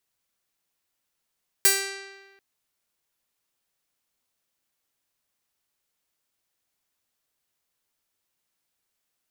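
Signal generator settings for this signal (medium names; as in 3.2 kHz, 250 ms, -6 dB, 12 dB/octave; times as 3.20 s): plucked string G4, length 0.74 s, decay 1.38 s, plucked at 0.31, bright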